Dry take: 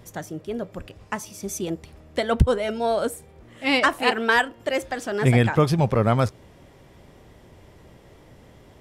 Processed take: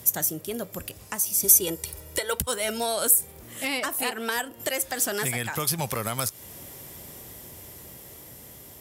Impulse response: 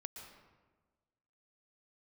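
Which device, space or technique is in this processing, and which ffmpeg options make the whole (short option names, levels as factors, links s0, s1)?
FM broadcast chain: -filter_complex "[0:a]highpass=57,dynaudnorm=f=460:g=9:m=1.88,acrossover=split=820|2200[s0][s1][s2];[s0]acompressor=threshold=0.0355:ratio=4[s3];[s1]acompressor=threshold=0.0316:ratio=4[s4];[s2]acompressor=threshold=0.0141:ratio=4[s5];[s3][s4][s5]amix=inputs=3:normalize=0,aemphasis=mode=production:type=50fm,alimiter=limit=0.141:level=0:latency=1:release=338,asoftclip=type=hard:threshold=0.119,lowpass=f=15000:w=0.5412,lowpass=f=15000:w=1.3066,aemphasis=mode=production:type=50fm,asettb=1/sr,asplit=3[s6][s7][s8];[s6]atrim=end=1.444[s9];[s7]atrim=start=1.44:end=2.38,asetpts=PTS-STARTPTS,afade=t=in:d=0.004:c=qsin,afade=t=out:st=0.936:d=0.004:c=qsin,aecho=1:1:2.1:0.88,atrim=end_sample=41454[s10];[s8]atrim=start=2.376[s11];[s9][s10]acrossfade=d=0.004:c1=hsin:c2=qsin[s12];[s12][s11]acrossfade=d=0.004:c1=qsin:c2=hsin"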